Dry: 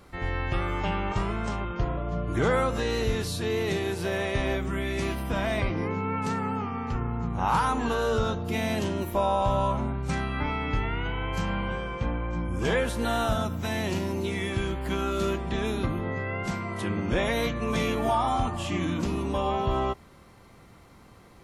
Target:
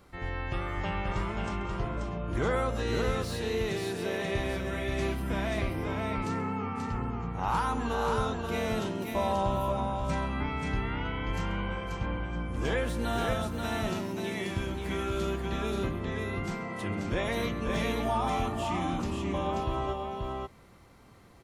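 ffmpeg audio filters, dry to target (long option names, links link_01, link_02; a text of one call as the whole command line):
ffmpeg -i in.wav -filter_complex "[0:a]asettb=1/sr,asplit=3[link_01][link_02][link_03];[link_01]atrim=end=19.104[link_04];[link_02]atrim=start=19.1:end=19.58,asetpts=PTS-STARTPTS,afade=type=in:duration=0.004:curve=qsin,afade=type=out:start_time=0.476:duration=0.004:curve=qsin,highshelf=frequency=7600:gain=-9.5[link_05];[link_03]atrim=start=19.576[link_06];[link_04][link_05]acrossfade=duration=0.004:curve1=hsin:curve2=qsin[link_07];[link_07][link_06]acrossfade=duration=0.004:curve1=qsin:curve2=hsin,aecho=1:1:133|534:0.133|0.631,acrossover=split=4800[link_08][link_09];[link_09]asoftclip=type=hard:threshold=-40dB[link_10];[link_08][link_10]amix=inputs=2:normalize=0,volume=-5dB" out.wav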